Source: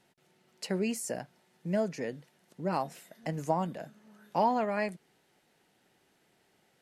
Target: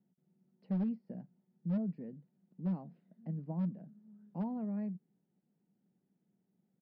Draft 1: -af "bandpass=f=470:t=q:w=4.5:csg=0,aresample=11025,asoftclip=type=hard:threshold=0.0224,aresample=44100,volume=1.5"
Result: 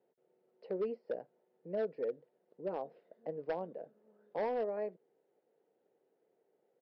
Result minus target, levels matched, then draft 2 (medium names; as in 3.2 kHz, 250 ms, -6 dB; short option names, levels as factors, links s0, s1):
500 Hz band +15.0 dB
-af "bandpass=f=190:t=q:w=4.5:csg=0,aresample=11025,asoftclip=type=hard:threshold=0.0224,aresample=44100,volume=1.5"